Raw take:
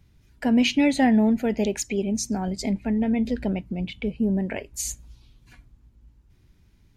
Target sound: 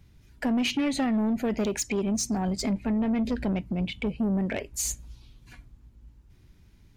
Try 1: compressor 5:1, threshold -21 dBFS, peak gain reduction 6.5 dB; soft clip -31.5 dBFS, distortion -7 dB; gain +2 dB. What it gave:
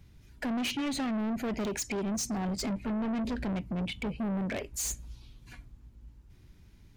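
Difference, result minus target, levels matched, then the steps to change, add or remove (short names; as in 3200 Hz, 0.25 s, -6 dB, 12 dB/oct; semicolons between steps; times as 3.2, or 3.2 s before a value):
soft clip: distortion +7 dB
change: soft clip -23 dBFS, distortion -15 dB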